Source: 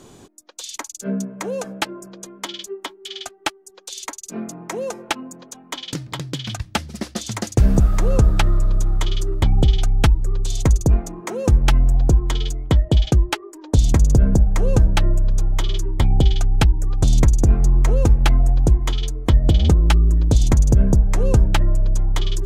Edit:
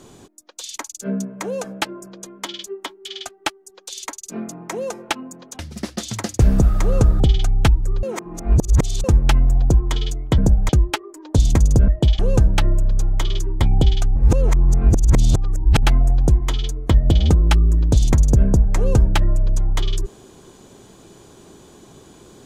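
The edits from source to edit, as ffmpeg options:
-filter_complex "[0:a]asplit=11[a][b][c][d][e][f][g][h][i][j][k];[a]atrim=end=5.592[l];[b]atrim=start=6.768:end=8.382[m];[c]atrim=start=9.588:end=10.422[n];[d]atrim=start=10.418:end=11.432,asetpts=PTS-STARTPTS,areverse[o];[e]atrim=start=11.428:end=12.772[p];[f]atrim=start=14.268:end=14.582[q];[g]atrim=start=13.078:end=14.272[r];[h]atrim=start=12.768:end=13.082[s];[i]atrim=start=14.578:end=16.552[t];[j]atrim=start=16.548:end=18.222,asetpts=PTS-STARTPTS,areverse[u];[k]atrim=start=18.218[v];[l][m]acrossfade=d=0.004:c1=hsin:c2=hsin[w];[w][n]acrossfade=d=0.004:c1=hsin:c2=hsin[x];[x][o]acrossfade=d=0.004:c1=hsin:c2=hsin[y];[y][p]acrossfade=d=0.004:c1=hsin:c2=hsin[z];[z][q]acrossfade=d=0.004:c1=hsin:c2=hsin[aa];[aa][r]acrossfade=d=0.004:c1=hsin:c2=hsin[ab];[ab][s]acrossfade=d=0.004:c1=hsin:c2=hsin[ac];[ac][t]acrossfade=d=0.004:c1=hsin:c2=hsin[ad];[ad][u]acrossfade=d=0.004:c1=hsin:c2=hsin[ae];[ae][v]acrossfade=d=0.004:c1=hsin:c2=hsin"

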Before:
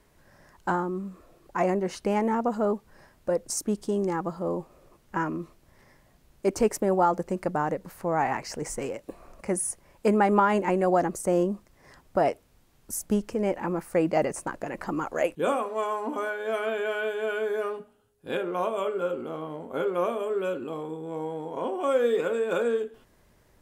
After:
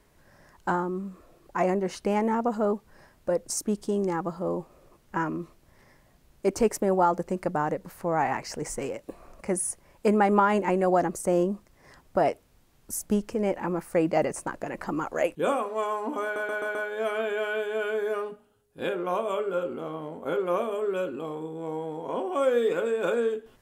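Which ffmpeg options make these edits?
-filter_complex "[0:a]asplit=5[a][b][c][d][e];[a]atrim=end=16.362[f];[b]atrim=start=16.228:end=16.362[g];[c]atrim=start=16.228:end=16.362[h];[d]atrim=start=16.228:end=16.362[i];[e]atrim=start=16.228[j];[f][g]acrossfade=d=0.004:c1=hsin:c2=hsin[k];[k][h]acrossfade=d=0.004:c1=hsin:c2=hsin[l];[l][i]acrossfade=d=0.004:c1=hsin:c2=hsin[m];[m][j]acrossfade=d=0.004:c1=hsin:c2=hsin"

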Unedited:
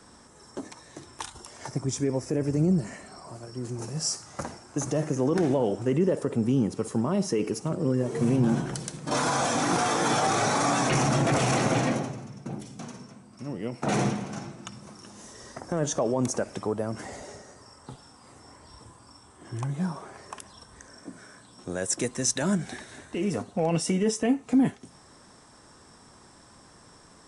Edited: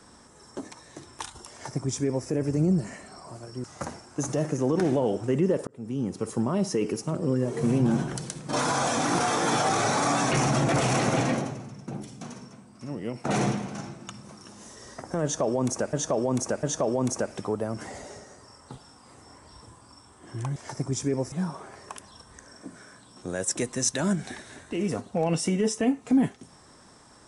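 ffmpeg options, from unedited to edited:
-filter_complex "[0:a]asplit=7[a][b][c][d][e][f][g];[a]atrim=end=3.642[h];[b]atrim=start=4.218:end=6.25,asetpts=PTS-STARTPTS,afade=t=out:st=2.028:d=0.004:c=hsin[i];[c]atrim=start=6.25:end=16.512,asetpts=PTS-STARTPTS,afade=t=in:d=0.62[j];[d]atrim=start=15.808:end=16.512[k];[e]atrim=start=15.808:end=19.742[l];[f]atrim=start=1.518:end=2.282[m];[g]atrim=start=19.738[n];[i][j]concat=n=2:v=0:a=1[o];[h][o]acrossfade=d=0.004:c1=hsin:c2=hsin[p];[p][k]acrossfade=d=0.004:c1=hsin:c2=hsin[q];[q][l]acrossfade=d=0.004:c1=hsin:c2=hsin[r];[r][m]acrossfade=d=0.004:c1=hsin:c2=hsin[s];[s][n]acrossfade=d=0.004:c1=hsin:c2=hsin"

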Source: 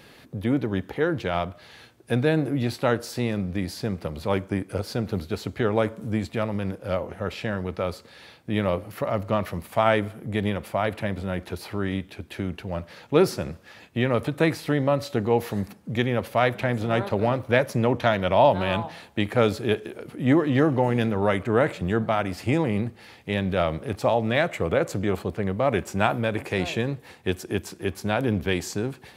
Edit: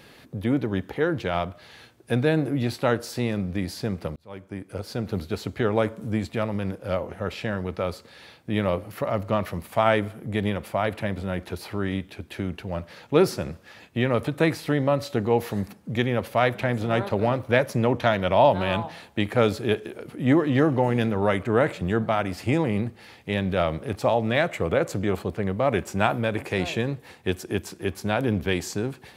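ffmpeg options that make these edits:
-filter_complex "[0:a]asplit=2[a][b];[a]atrim=end=4.16,asetpts=PTS-STARTPTS,afade=t=out:st=4.156:d=0.004:c=hsin[c];[b]atrim=start=4.16,asetpts=PTS-STARTPTS,afade=t=in:d=1.05[d];[c][d]concat=n=2:v=0:a=1"

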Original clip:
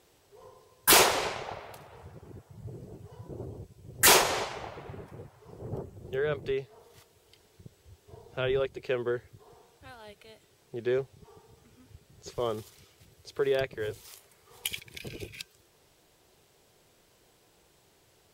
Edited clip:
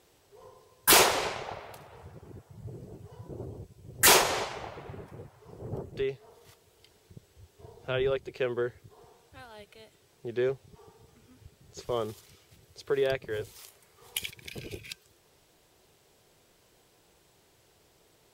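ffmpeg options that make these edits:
-filter_complex "[0:a]asplit=2[a][b];[a]atrim=end=5.922[c];[b]atrim=start=6.408[d];[c][d]acrossfade=d=0.004:c1=hsin:c2=hsin"

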